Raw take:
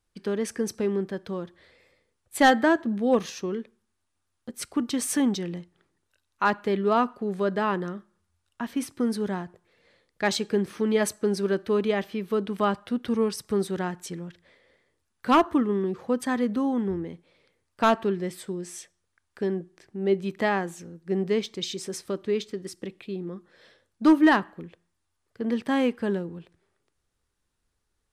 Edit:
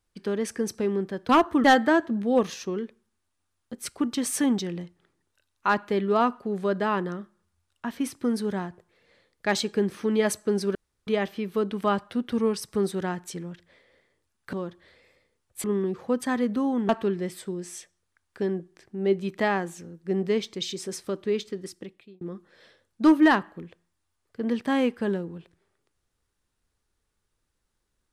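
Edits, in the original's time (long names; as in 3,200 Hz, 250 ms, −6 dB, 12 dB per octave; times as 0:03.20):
0:01.29–0:02.40: swap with 0:15.29–0:15.64
0:11.51–0:11.83: fill with room tone
0:16.89–0:17.90: remove
0:22.62–0:23.22: fade out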